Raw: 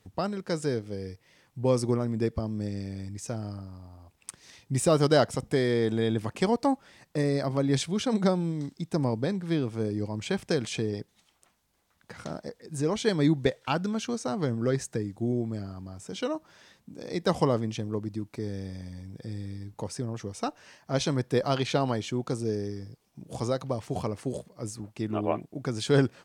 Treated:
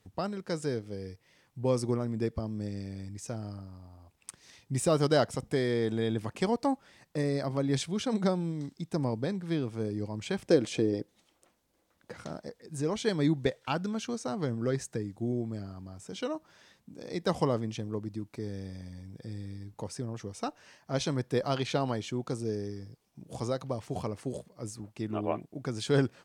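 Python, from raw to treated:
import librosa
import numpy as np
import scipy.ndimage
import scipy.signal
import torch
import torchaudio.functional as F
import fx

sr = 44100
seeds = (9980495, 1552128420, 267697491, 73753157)

y = fx.small_body(x, sr, hz=(320.0, 510.0), ring_ms=25, db=10, at=(10.44, 12.17))
y = y * librosa.db_to_amplitude(-3.5)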